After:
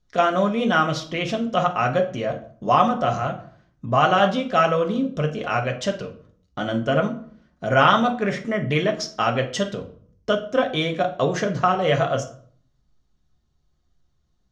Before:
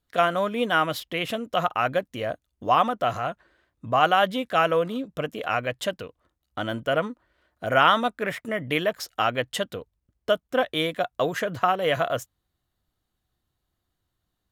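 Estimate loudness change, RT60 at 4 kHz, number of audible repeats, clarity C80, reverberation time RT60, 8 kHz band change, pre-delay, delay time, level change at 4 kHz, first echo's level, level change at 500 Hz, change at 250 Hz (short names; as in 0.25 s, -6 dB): +3.0 dB, 0.35 s, none, 16.0 dB, 0.55 s, +3.5 dB, 5 ms, none, +1.0 dB, none, +3.5 dB, +7.0 dB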